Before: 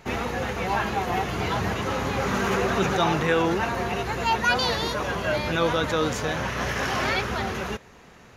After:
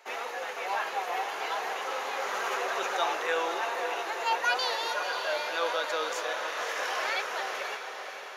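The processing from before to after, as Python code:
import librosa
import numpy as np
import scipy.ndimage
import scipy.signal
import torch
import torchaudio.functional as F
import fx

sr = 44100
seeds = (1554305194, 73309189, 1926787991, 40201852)

y = scipy.signal.sosfilt(scipy.signal.butter(4, 490.0, 'highpass', fs=sr, output='sos'), x)
y = fx.echo_diffused(y, sr, ms=550, feedback_pct=54, wet_db=-7.0)
y = F.gain(torch.from_numpy(y), -5.0).numpy()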